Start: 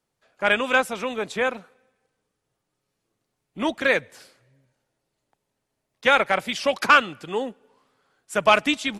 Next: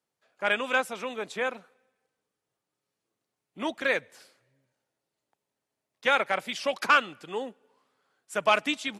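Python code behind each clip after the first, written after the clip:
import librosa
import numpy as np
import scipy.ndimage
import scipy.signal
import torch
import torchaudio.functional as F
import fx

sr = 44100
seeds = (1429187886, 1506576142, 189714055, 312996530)

y = fx.highpass(x, sr, hz=220.0, slope=6)
y = F.gain(torch.from_numpy(y), -5.5).numpy()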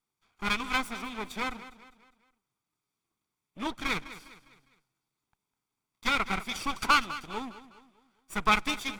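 y = fx.lower_of_two(x, sr, delay_ms=0.86)
y = fx.echo_feedback(y, sr, ms=203, feedback_pct=42, wet_db=-15.0)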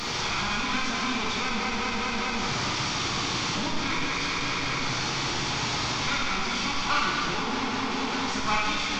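y = fx.delta_mod(x, sr, bps=32000, step_db=-20.5)
y = fx.rev_plate(y, sr, seeds[0], rt60_s=1.6, hf_ratio=0.95, predelay_ms=0, drr_db=-3.5)
y = F.gain(torch.from_numpy(y), -6.0).numpy()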